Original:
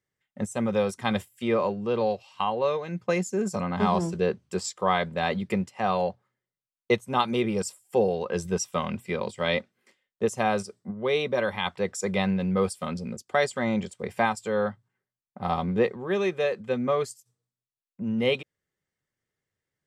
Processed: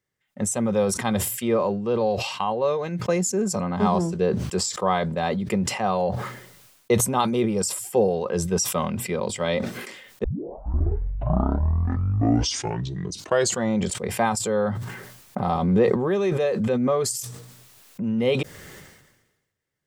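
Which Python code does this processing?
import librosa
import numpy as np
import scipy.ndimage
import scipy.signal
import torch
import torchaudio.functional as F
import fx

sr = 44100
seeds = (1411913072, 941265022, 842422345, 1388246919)

y = fx.pre_swell(x, sr, db_per_s=37.0, at=(14.39, 18.09), fade=0.02)
y = fx.edit(y, sr, fx.tape_start(start_s=10.24, length_s=3.53), tone=tone)
y = fx.dynamic_eq(y, sr, hz=2400.0, q=0.76, threshold_db=-42.0, ratio=4.0, max_db=-7)
y = fx.sustainer(y, sr, db_per_s=51.0)
y = y * librosa.db_to_amplitude(3.0)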